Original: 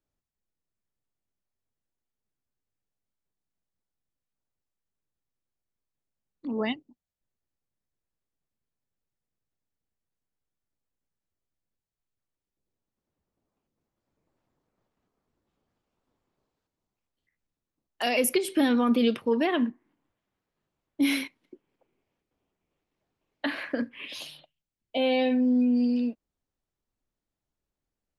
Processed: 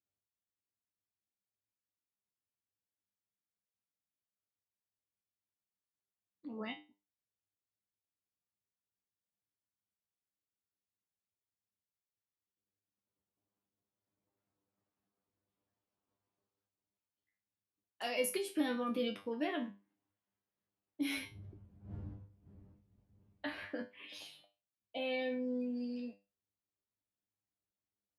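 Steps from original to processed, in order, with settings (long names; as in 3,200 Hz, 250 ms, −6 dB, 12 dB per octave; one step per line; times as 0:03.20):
0:21.14–0:23.64: wind on the microphone 110 Hz −37 dBFS
high-pass filter 59 Hz
tuned comb filter 100 Hz, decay 0.28 s, harmonics all, mix 90%
level −2.5 dB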